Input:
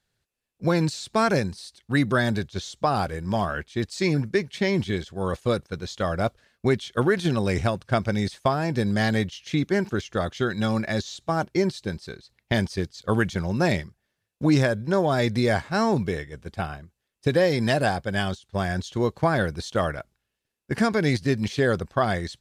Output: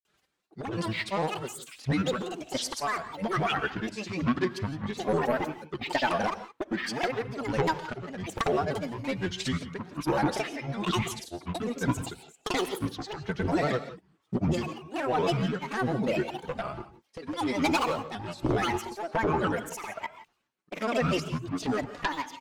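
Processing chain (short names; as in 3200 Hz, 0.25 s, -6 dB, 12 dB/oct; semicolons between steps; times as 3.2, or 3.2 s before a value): HPF 360 Hz 6 dB/oct; high shelf 3400 Hz -8.5 dB; comb 4.4 ms, depth 83%; compressor 6:1, threshold -30 dBFS, peak gain reduction 15.5 dB; sine folder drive 9 dB, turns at -15.5 dBFS; tremolo triangle 1.2 Hz, depth 85%; grains, pitch spread up and down by 12 st; non-linear reverb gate 0.19 s rising, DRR 11.5 dB; shaped vibrato saw up 5.4 Hz, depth 100 cents; gain -2 dB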